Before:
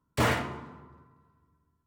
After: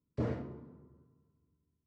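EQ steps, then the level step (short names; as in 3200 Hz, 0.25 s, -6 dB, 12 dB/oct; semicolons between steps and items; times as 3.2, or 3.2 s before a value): tape spacing loss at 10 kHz 39 dB; low shelf 68 Hz -6.5 dB; band shelf 1600 Hz -12.5 dB 2.6 oct; -4.0 dB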